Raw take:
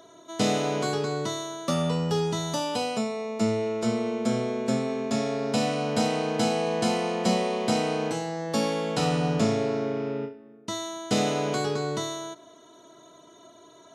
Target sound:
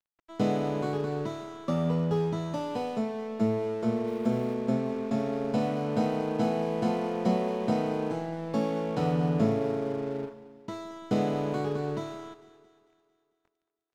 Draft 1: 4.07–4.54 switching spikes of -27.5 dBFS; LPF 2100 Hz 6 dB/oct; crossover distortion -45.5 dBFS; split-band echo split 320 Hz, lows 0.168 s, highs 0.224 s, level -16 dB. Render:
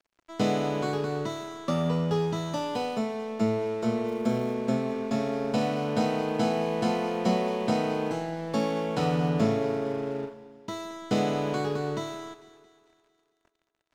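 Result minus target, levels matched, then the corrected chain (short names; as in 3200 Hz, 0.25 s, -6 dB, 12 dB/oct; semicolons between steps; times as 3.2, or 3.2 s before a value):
2000 Hz band +4.0 dB
4.07–4.54 switching spikes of -27.5 dBFS; LPF 770 Hz 6 dB/oct; crossover distortion -45.5 dBFS; split-band echo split 320 Hz, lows 0.168 s, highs 0.224 s, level -16 dB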